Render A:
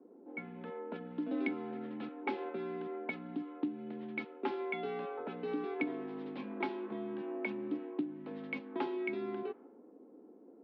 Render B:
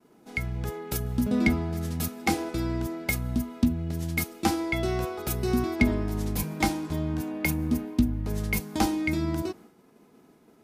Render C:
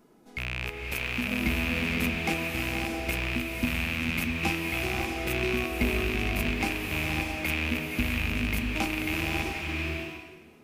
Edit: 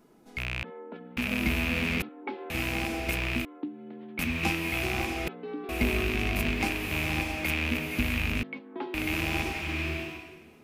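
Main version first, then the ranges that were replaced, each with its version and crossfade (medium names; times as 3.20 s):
C
0.63–1.17 s: from A
2.02–2.50 s: from A
3.45–4.19 s: from A
5.28–5.69 s: from A
8.43–8.94 s: from A
not used: B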